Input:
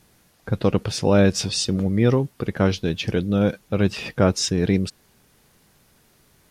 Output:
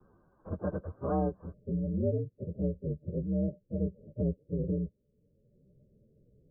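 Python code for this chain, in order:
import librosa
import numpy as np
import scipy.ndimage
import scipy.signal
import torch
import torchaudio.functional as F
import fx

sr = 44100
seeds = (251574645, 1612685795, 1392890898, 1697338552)

y = fx.partial_stretch(x, sr, pct=126)
y = fx.cheby_ripple(y, sr, hz=fx.steps((0.0, 1600.0), (1.52, 610.0)), ripple_db=6)
y = fx.band_squash(y, sr, depth_pct=40)
y = y * 10.0 ** (-7.5 / 20.0)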